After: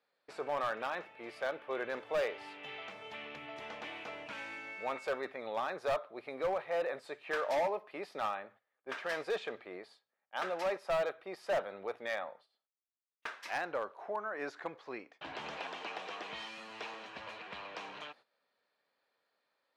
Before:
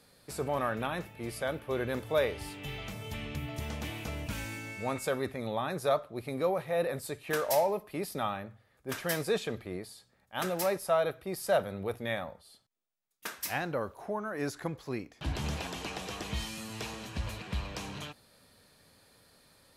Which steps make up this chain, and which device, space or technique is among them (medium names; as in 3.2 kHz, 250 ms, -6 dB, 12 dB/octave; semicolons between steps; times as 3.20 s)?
walkie-talkie (band-pass 530–2800 Hz; hard clipper -28 dBFS, distortion -12 dB; gate -59 dBFS, range -14 dB)